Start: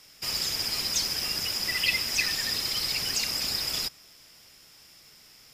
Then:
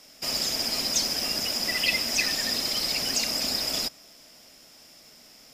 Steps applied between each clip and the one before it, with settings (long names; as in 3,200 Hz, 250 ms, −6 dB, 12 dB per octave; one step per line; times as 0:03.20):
graphic EQ with 15 bands 100 Hz −6 dB, 250 Hz +10 dB, 630 Hz +10 dB, 6,300 Hz +3 dB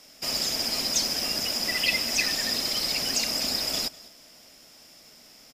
single-tap delay 200 ms −21.5 dB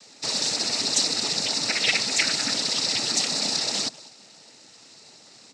cochlear-implant simulation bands 12
level +3 dB